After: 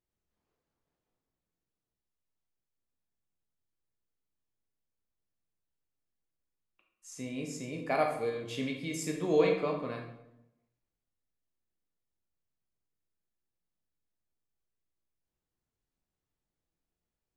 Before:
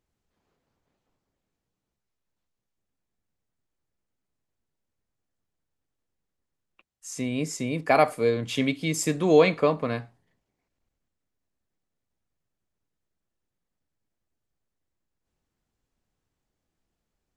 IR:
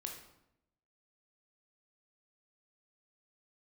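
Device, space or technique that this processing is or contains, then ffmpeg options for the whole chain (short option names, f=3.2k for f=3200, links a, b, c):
bathroom: -filter_complex "[1:a]atrim=start_sample=2205[a];[0:a][a]afir=irnorm=-1:irlink=0,volume=-7dB"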